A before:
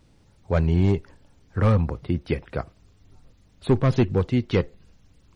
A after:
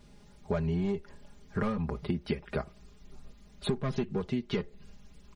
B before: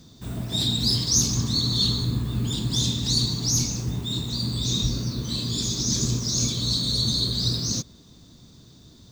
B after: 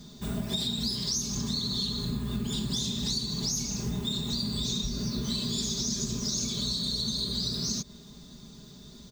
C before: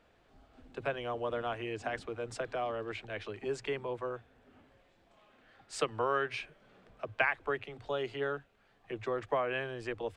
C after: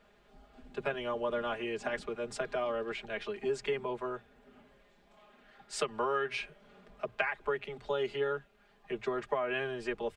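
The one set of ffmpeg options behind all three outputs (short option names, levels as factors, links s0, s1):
-af "aecho=1:1:4.9:0.89,acompressor=threshold=0.0447:ratio=16"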